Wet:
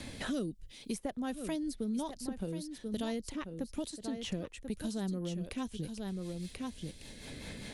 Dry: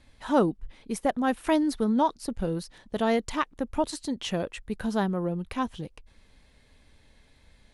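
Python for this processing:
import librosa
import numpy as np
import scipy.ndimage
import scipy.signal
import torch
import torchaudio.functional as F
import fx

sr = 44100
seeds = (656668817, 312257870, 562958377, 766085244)

y = fx.low_shelf(x, sr, hz=440.0, db=-6.5)
y = fx.rotary_switch(y, sr, hz=0.75, then_hz=5.0, switch_at_s=2.24)
y = fx.peak_eq(y, sr, hz=1200.0, db=-14.0, octaves=2.9)
y = y + 10.0 ** (-12.0 / 20.0) * np.pad(y, (int(1037 * sr / 1000.0), 0))[:len(y)]
y = fx.band_squash(y, sr, depth_pct=100)
y = y * librosa.db_to_amplitude(1.0)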